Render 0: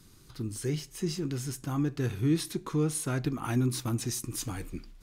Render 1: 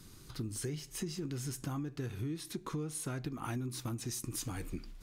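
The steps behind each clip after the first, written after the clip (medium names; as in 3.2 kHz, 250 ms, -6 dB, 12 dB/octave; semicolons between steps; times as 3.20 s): compression 12:1, threshold -37 dBFS, peak gain reduction 16.5 dB; trim +2 dB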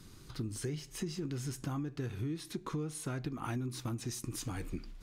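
treble shelf 8 kHz -7.5 dB; trim +1 dB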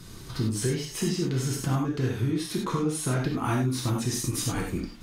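gated-style reverb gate 120 ms flat, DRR -1.5 dB; trim +8 dB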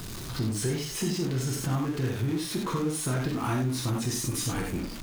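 jump at every zero crossing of -31.5 dBFS; trim -3.5 dB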